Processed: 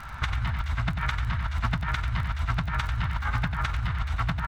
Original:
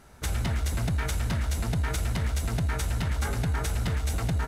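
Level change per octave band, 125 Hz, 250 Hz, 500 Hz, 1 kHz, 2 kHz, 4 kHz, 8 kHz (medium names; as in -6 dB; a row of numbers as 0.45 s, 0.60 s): -0.5 dB, -2.5 dB, -8.0 dB, +5.5 dB, +5.0 dB, 0.0 dB, -14.5 dB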